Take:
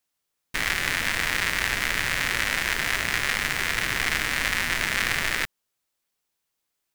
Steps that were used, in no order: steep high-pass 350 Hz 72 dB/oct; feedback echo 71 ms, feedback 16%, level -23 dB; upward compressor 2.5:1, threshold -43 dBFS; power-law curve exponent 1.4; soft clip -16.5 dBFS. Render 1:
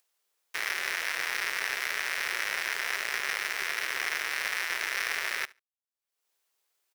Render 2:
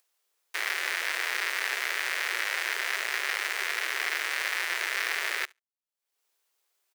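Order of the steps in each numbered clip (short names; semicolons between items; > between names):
upward compressor > soft clip > steep high-pass > power-law curve > feedback echo; feedback echo > soft clip > upward compressor > power-law curve > steep high-pass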